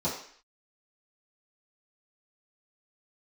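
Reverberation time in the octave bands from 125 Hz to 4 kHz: 0.35 s, 0.50 s, 0.50 s, 0.55 s, 0.65 s, 0.60 s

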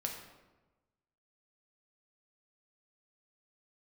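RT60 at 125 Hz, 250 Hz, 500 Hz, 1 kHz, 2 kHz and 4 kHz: 1.4 s, 1.3 s, 1.2 s, 1.1 s, 0.90 s, 0.70 s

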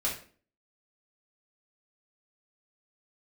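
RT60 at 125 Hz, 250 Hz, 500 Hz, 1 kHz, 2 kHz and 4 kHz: 0.50 s, 0.55 s, 0.45 s, 0.40 s, 0.40 s, 0.35 s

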